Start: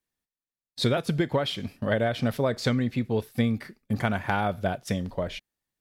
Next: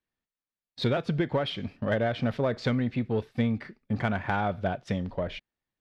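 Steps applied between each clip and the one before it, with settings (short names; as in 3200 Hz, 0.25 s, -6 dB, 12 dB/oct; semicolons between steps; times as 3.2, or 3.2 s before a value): LPF 3400 Hz 12 dB/oct; in parallel at -5 dB: soft clip -25.5 dBFS, distortion -10 dB; on the sum: gain -4 dB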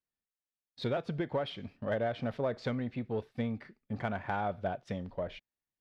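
dynamic EQ 670 Hz, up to +5 dB, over -38 dBFS, Q 0.79; gain -9 dB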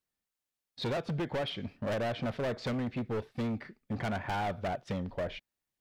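overloaded stage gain 34.5 dB; gain +4.5 dB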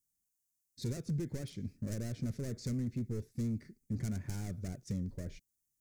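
EQ curve 120 Hz 0 dB, 380 Hz -7 dB, 810 Hz -28 dB, 2100 Hz -15 dB, 3100 Hz -22 dB, 6400 Hz +6 dB; gain +1.5 dB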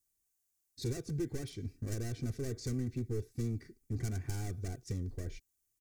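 comb 2.6 ms, depth 66%; gain +1 dB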